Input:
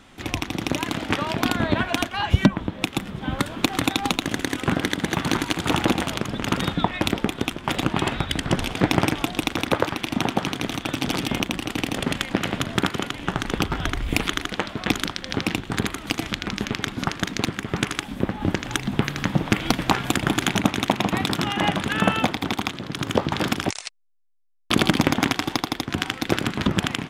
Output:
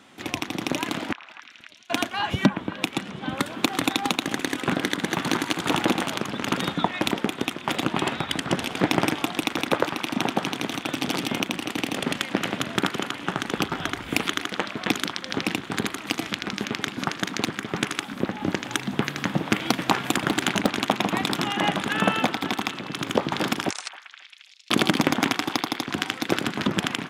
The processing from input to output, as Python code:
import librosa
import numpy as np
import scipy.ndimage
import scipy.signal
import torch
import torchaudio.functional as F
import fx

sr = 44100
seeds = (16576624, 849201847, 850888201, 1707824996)

y = scipy.signal.sosfilt(scipy.signal.butter(2, 170.0, 'highpass', fs=sr, output='sos'), x)
y = fx.gate_flip(y, sr, shuts_db=-14.0, range_db=-39, at=(1.11, 1.9))
y = fx.lowpass(y, sr, hz=9300.0, slope=12, at=(2.94, 3.34))
y = fx.echo_stepped(y, sr, ms=270, hz=1200.0, octaves=0.7, feedback_pct=70, wet_db=-10.0)
y = fx.doppler_dist(y, sr, depth_ms=0.52, at=(20.27, 20.91))
y = y * 10.0 ** (-1.0 / 20.0)